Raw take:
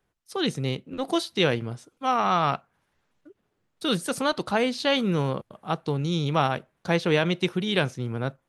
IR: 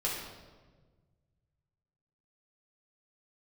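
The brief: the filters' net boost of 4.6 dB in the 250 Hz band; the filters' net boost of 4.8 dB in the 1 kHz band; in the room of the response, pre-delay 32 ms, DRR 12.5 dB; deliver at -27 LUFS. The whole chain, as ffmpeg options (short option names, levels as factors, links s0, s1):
-filter_complex "[0:a]equalizer=f=250:t=o:g=6,equalizer=f=1000:t=o:g=6,asplit=2[s0][s1];[1:a]atrim=start_sample=2205,adelay=32[s2];[s1][s2]afir=irnorm=-1:irlink=0,volume=0.119[s3];[s0][s3]amix=inputs=2:normalize=0,volume=0.596"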